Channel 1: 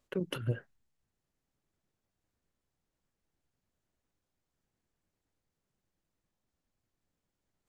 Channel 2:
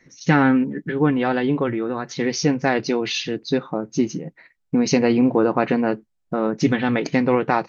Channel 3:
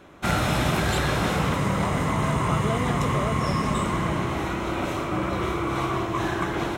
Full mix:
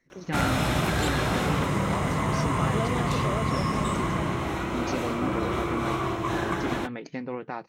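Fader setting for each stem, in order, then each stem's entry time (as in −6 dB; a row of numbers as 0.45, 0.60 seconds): −8.5, −15.5, −2.0 decibels; 0.00, 0.00, 0.10 seconds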